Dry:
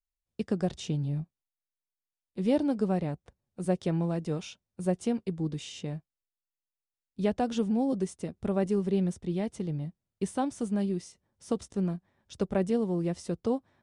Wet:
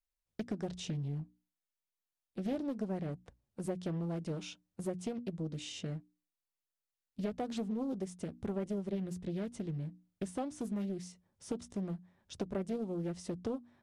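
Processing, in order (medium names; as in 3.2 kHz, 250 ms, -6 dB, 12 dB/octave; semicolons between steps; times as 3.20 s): hum notches 60/120/180/240/300 Hz; compression 2.5:1, threshold -36 dBFS, peak gain reduction 10.5 dB; loudspeaker Doppler distortion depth 0.44 ms; trim -1 dB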